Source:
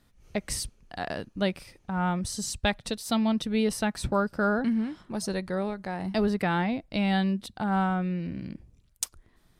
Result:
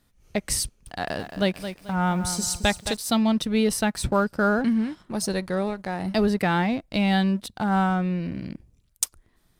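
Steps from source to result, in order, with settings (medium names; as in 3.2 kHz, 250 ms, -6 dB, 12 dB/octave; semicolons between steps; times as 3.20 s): treble shelf 7 kHz +6 dB; waveshaping leveller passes 1; 0.64–2.97 s: bit-crushed delay 219 ms, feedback 35%, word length 8-bit, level -10 dB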